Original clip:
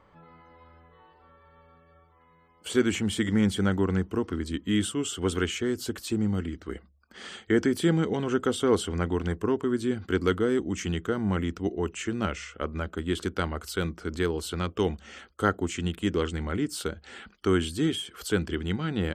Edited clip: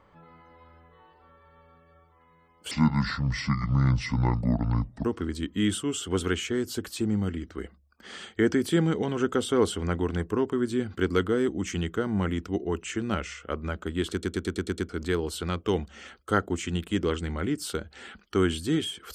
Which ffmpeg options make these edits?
-filter_complex "[0:a]asplit=10[s0][s1][s2][s3][s4][s5][s6][s7][s8][s9];[s0]atrim=end=2.714[s10];[s1]atrim=start=2.71:end=4.16,asetpts=PTS-STARTPTS,asetrate=27342,aresample=44100,atrim=end_sample=103137,asetpts=PTS-STARTPTS[s11];[s2]atrim=start=4.156:end=13.342[s12];[s3]atrim=start=13.228:end=13.342[s13];[s4]atrim=start=13.228:end=13.342[s14];[s5]atrim=start=13.228:end=13.342[s15];[s6]atrim=start=13.228:end=13.342[s16];[s7]atrim=start=13.228:end=13.342[s17];[s8]atrim=start=13.228:end=13.342[s18];[s9]atrim=start=13.998[s19];[s10][s11]acrossfade=d=0.004:c1=hsin:c2=hsin[s20];[s20][s12]acrossfade=d=0.004:c1=hsin:c2=hsin[s21];[s21][s13]acrossfade=d=0.004:c1=hsin:c2=hsin[s22];[s22][s14]acrossfade=d=0.004:c1=hsin:c2=hsin[s23];[s23][s15]acrossfade=d=0.004:c1=hsin:c2=hsin[s24];[s24][s16]acrossfade=d=0.004:c1=hsin:c2=hsin[s25];[s25][s17]acrossfade=d=0.004:c1=hsin:c2=hsin[s26];[s26][s18]acrossfade=d=0.004:c1=hsin:c2=hsin[s27];[s27][s19]acrossfade=d=0.004:c1=hsin:c2=hsin"

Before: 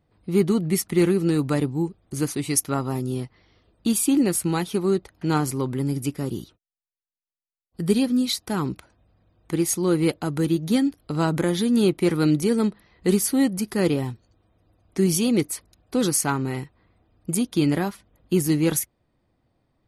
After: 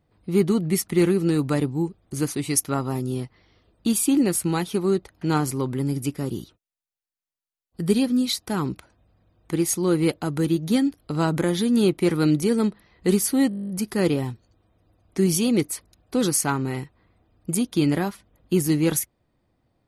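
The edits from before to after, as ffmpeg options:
-filter_complex "[0:a]asplit=11[s0][s1][s2][s3][s4][s5][s6][s7][s8][s9][s10];[s0]atrim=end=13.512[s11];[s1]atrim=start=13.488:end=13.512[s12];[s2]atrim=start=13.488:end=13.512[s13];[s3]atrim=start=13.488:end=13.512[s14];[s4]atrim=start=13.488:end=13.512[s15];[s5]atrim=start=13.488:end=13.512[s16];[s6]atrim=start=13.488:end=13.512[s17];[s7]atrim=start=13.488:end=13.512[s18];[s8]atrim=start=13.488:end=13.512[s19];[s9]atrim=start=13.488:end=13.512[s20];[s10]atrim=start=13.488[s21];[s11][s12]acrossfade=d=0.004:c1=hsin:c2=hsin[s22];[s22][s13]acrossfade=d=0.004:c1=hsin:c2=hsin[s23];[s23][s14]acrossfade=d=0.004:c1=hsin:c2=hsin[s24];[s24][s15]acrossfade=d=0.004:c1=hsin:c2=hsin[s25];[s25][s16]acrossfade=d=0.004:c1=hsin:c2=hsin[s26];[s26][s17]acrossfade=d=0.004:c1=hsin:c2=hsin[s27];[s27][s18]acrossfade=d=0.004:c1=hsin:c2=hsin[s28];[s28][s19]acrossfade=d=0.004:c1=hsin:c2=hsin[s29];[s29][s20]acrossfade=d=0.004:c1=hsin:c2=hsin[s30];[s30][s21]acrossfade=d=0.004:c1=hsin:c2=hsin"

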